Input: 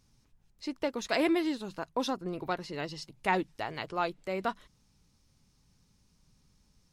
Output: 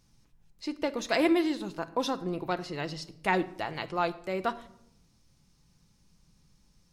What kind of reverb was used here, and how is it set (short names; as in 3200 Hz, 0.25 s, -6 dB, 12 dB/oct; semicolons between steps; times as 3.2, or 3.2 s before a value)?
shoebox room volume 2000 m³, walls furnished, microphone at 0.77 m; gain +1.5 dB